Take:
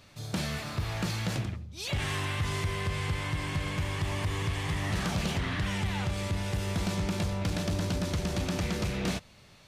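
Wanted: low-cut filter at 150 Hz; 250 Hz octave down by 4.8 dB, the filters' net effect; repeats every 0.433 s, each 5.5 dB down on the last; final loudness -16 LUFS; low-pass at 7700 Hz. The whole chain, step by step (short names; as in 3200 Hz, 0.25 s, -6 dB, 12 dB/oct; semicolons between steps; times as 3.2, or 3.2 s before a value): HPF 150 Hz; LPF 7700 Hz; bell 250 Hz -5.5 dB; feedback echo 0.433 s, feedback 53%, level -5.5 dB; gain +18 dB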